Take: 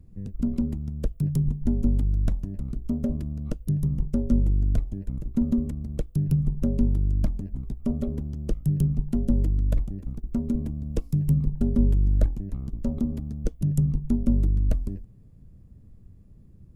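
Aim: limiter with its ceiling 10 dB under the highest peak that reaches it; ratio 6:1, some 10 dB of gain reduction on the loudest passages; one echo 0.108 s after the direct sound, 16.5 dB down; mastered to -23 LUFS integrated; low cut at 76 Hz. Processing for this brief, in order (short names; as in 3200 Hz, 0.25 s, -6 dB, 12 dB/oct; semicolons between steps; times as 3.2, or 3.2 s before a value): HPF 76 Hz; compressor 6:1, threshold -30 dBFS; limiter -29 dBFS; echo 0.108 s -16.5 dB; gain +15.5 dB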